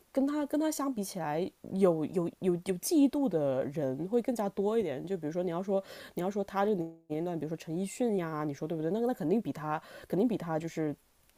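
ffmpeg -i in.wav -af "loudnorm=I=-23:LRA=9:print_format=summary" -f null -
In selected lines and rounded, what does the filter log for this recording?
Input Integrated:    -32.6 LUFS
Input True Peak:     -14.0 dBTP
Input LRA:             3.0 LU
Input Threshold:     -42.7 LUFS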